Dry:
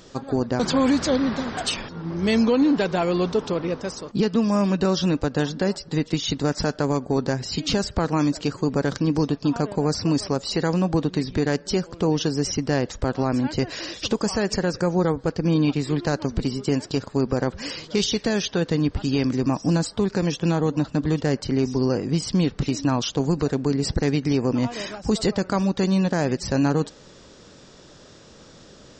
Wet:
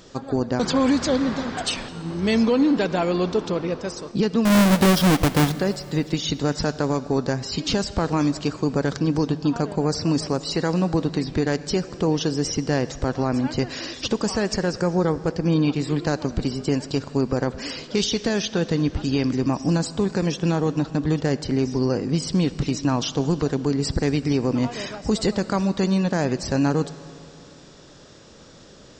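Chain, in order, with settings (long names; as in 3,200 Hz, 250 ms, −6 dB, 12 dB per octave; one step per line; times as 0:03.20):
0:04.45–0:05.52: each half-wave held at its own peak
convolution reverb RT60 2.7 s, pre-delay 61 ms, DRR 15.5 dB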